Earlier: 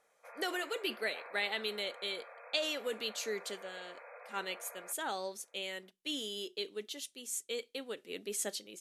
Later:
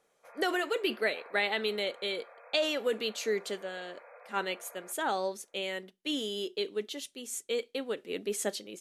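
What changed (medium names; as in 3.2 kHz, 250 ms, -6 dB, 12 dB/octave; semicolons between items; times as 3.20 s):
speech +8.0 dB; master: add treble shelf 2.6 kHz -8.5 dB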